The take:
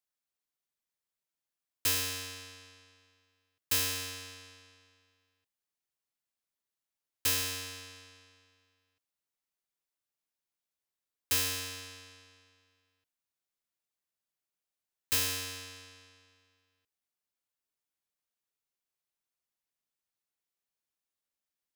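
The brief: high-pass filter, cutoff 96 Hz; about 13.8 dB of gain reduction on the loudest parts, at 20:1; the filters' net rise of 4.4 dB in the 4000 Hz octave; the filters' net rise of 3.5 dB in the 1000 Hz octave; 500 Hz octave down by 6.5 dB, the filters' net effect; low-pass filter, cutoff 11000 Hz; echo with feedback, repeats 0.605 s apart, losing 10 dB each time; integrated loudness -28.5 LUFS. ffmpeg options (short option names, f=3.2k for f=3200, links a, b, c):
-af "highpass=96,lowpass=11k,equalizer=f=500:t=o:g=-8.5,equalizer=f=1k:t=o:g=5.5,equalizer=f=4k:t=o:g=5.5,acompressor=threshold=-38dB:ratio=20,aecho=1:1:605|1210|1815|2420:0.316|0.101|0.0324|0.0104,volume=14.5dB"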